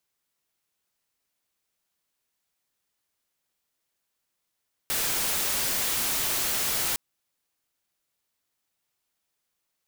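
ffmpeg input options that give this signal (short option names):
-f lavfi -i "anoisesrc=c=white:a=0.0774:d=2.06:r=44100:seed=1"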